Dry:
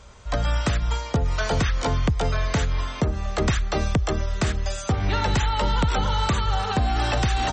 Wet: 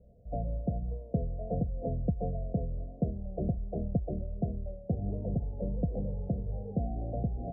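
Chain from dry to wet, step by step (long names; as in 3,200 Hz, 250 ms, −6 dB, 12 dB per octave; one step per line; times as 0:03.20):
pitch vibrato 1.4 Hz 56 cents
Chebyshev low-pass with heavy ripple 720 Hz, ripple 9 dB
level −3.5 dB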